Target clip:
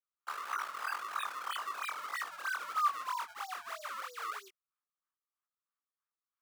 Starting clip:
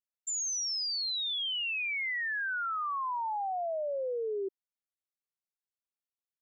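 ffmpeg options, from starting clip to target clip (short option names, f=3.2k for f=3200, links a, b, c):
-af "acrusher=samples=32:mix=1:aa=0.000001:lfo=1:lforange=51.2:lforate=3.1,flanger=delay=18:depth=6.3:speed=1.8,highpass=f=1.2k:t=q:w=6,volume=-5.5dB"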